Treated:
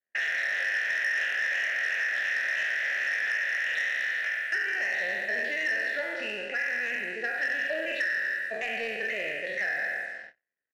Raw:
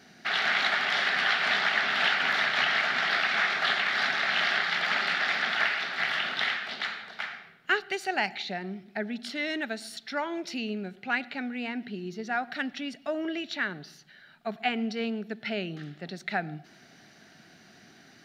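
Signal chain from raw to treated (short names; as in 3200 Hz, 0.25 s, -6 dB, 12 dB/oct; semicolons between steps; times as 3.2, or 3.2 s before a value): spectral trails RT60 2.57 s; bell 1800 Hz +10 dB 1.1 oct; on a send: frequency-shifting echo 0.131 s, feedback 52%, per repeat -78 Hz, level -22.5 dB; on the sum: compressor 6:1, threshold -21 dBFS, peak gain reduction 12.5 dB; tempo 1.7×; vowel filter e; de-hum 85.87 Hz, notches 40; sample leveller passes 2; gate -44 dBFS, range -35 dB; low-pass opened by the level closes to 2000 Hz, open at -28 dBFS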